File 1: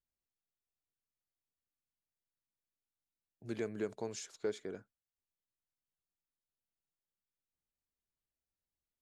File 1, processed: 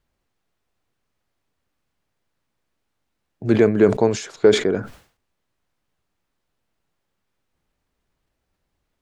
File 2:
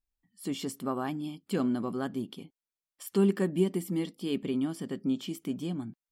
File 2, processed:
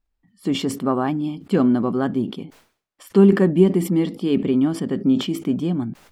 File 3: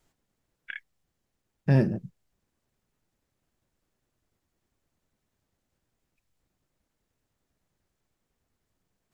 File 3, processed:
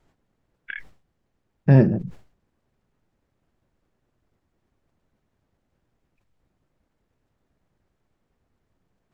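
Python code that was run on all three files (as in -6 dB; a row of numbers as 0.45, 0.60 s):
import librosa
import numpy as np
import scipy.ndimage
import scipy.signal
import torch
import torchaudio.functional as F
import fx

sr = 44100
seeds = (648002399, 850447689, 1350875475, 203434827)

y = fx.lowpass(x, sr, hz=1600.0, slope=6)
y = fx.sustainer(y, sr, db_per_s=130.0)
y = librosa.util.normalize(y) * 10.0 ** (-3 / 20.0)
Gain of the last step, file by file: +23.5, +12.0, +7.0 dB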